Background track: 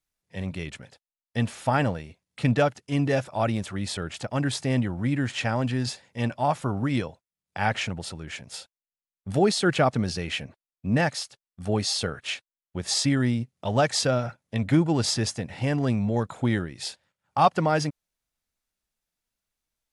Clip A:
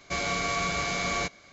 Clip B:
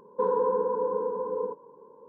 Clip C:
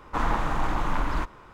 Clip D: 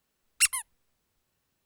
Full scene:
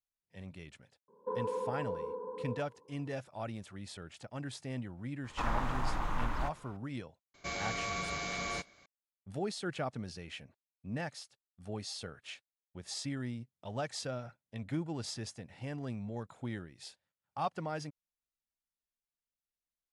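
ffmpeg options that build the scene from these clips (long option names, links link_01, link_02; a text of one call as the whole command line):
ffmpeg -i bed.wav -i cue0.wav -i cue1.wav -i cue2.wav -filter_complex "[0:a]volume=-15.5dB[link_01];[3:a]equalizer=frequency=330:width=1.5:gain=-3.5[link_02];[2:a]atrim=end=2.08,asetpts=PTS-STARTPTS,volume=-11dB,afade=type=in:duration=0.004:curve=hsin,afade=type=out:start_time=2.076:duration=0.004:curve=hsin,adelay=1080[link_03];[link_02]atrim=end=1.53,asetpts=PTS-STARTPTS,volume=-8dB,afade=type=in:duration=0.004:curve=hsin,afade=type=out:start_time=1.526:duration=0.004:curve=hsin,adelay=5240[link_04];[1:a]atrim=end=1.52,asetpts=PTS-STARTPTS,volume=-8.5dB,afade=type=in:duration=0.004:curve=hsin,afade=type=out:start_time=1.516:duration=0.004:curve=hsin,adelay=7340[link_05];[link_01][link_03][link_04][link_05]amix=inputs=4:normalize=0" out.wav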